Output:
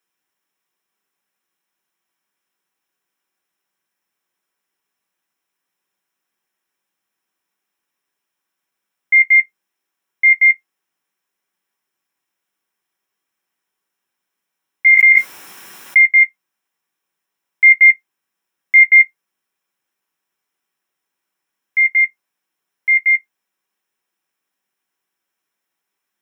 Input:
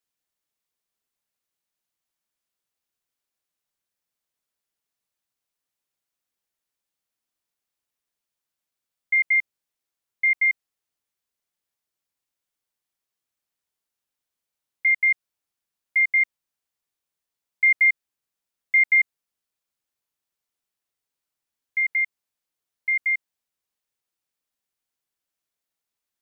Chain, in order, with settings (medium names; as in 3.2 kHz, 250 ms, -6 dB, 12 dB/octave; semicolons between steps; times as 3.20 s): reverberation RT60 0.15 s, pre-delay 3 ms, DRR 7.5 dB; 14.86–16.02 s: level flattener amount 100%; trim +5 dB